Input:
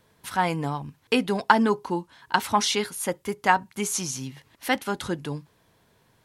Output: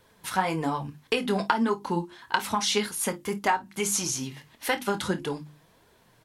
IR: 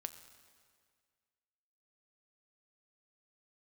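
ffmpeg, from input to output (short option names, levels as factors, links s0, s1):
-af "bandreject=f=50:t=h:w=6,bandreject=f=100:t=h:w=6,bandreject=f=150:t=h:w=6,bandreject=f=200:t=h:w=6,bandreject=f=250:t=h:w=6,bandreject=f=300:t=h:w=6,bandreject=f=350:t=h:w=6,acompressor=threshold=0.0631:ratio=5,flanger=delay=1.9:depth=5.2:regen=34:speed=1.7:shape=triangular,aecho=1:1:25|52:0.299|0.133,volume=2"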